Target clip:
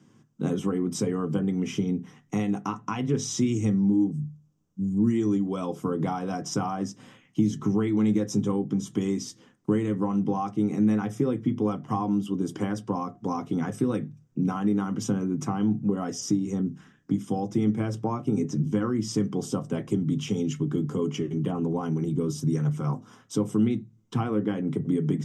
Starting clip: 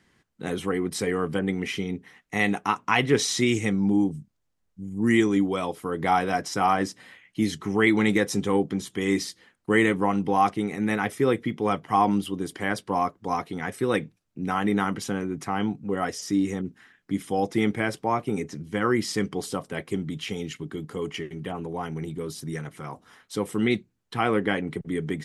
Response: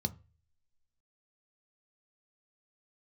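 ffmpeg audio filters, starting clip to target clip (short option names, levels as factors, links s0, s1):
-filter_complex "[0:a]acompressor=threshold=0.0316:ratio=6[s0];[1:a]atrim=start_sample=2205,asetrate=61740,aresample=44100[s1];[s0][s1]afir=irnorm=-1:irlink=0"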